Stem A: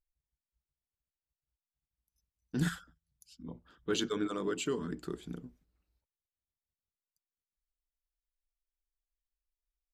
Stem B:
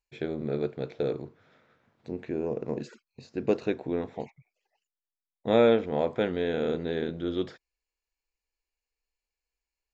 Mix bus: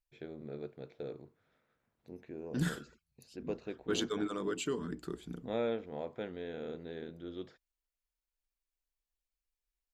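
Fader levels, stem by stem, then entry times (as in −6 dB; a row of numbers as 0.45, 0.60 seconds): −1.5, −13.5 decibels; 0.00, 0.00 seconds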